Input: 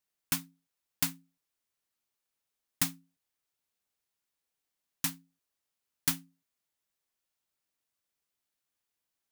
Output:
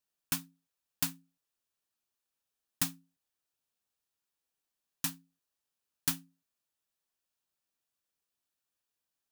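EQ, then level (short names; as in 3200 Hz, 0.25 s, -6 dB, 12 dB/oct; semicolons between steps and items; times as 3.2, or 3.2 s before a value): notch 2100 Hz, Q 9; -2.0 dB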